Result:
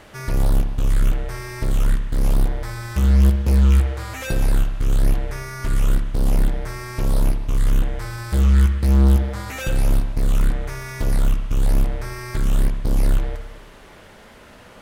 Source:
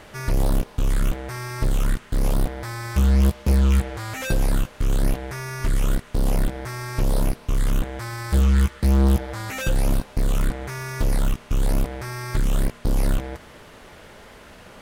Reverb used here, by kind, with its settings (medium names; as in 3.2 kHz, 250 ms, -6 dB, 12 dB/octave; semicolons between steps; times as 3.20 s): spring tank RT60 1 s, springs 59 ms, chirp 25 ms, DRR 6.5 dB; trim -1 dB